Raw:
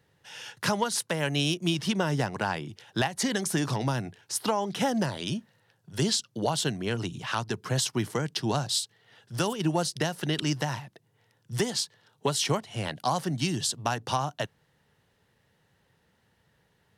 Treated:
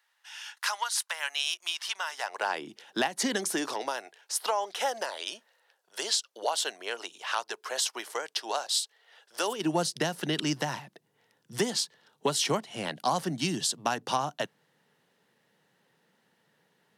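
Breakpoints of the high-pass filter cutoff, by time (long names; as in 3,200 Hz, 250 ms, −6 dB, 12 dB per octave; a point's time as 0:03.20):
high-pass filter 24 dB per octave
0:02.13 920 Hz
0:02.69 230 Hz
0:03.37 230 Hz
0:04.03 500 Hz
0:09.34 500 Hz
0:09.75 170 Hz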